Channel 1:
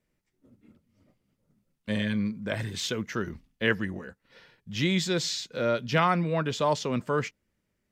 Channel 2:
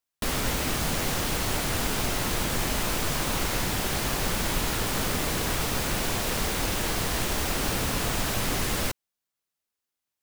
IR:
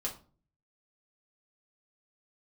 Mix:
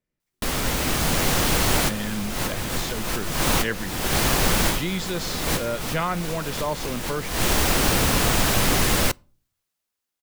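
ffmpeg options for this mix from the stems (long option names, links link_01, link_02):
-filter_complex "[0:a]volume=-7.5dB,asplit=2[link_01][link_02];[1:a]adelay=200,volume=1.5dB,asplit=2[link_03][link_04];[link_04]volume=-23.5dB[link_05];[link_02]apad=whole_len=459649[link_06];[link_03][link_06]sidechaincompress=threshold=-46dB:ratio=12:attack=16:release=213[link_07];[2:a]atrim=start_sample=2205[link_08];[link_05][link_08]afir=irnorm=-1:irlink=0[link_09];[link_01][link_07][link_09]amix=inputs=3:normalize=0,dynaudnorm=framelen=160:gausssize=13:maxgain=5.5dB"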